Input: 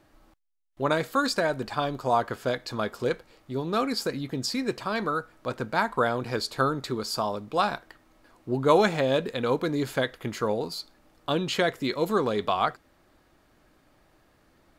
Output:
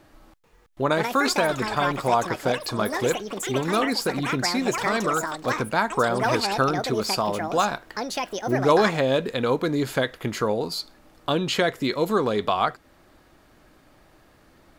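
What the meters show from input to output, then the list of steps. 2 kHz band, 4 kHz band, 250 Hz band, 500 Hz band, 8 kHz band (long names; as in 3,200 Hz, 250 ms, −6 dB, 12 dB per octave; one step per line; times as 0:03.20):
+5.0 dB, +4.5 dB, +3.5 dB, +3.0 dB, +8.0 dB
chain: in parallel at +1 dB: downward compressor, threshold −32 dBFS, peak gain reduction 16 dB
on the sum: delay with pitch and tempo change per echo 438 ms, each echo +7 semitones, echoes 2, each echo −6 dB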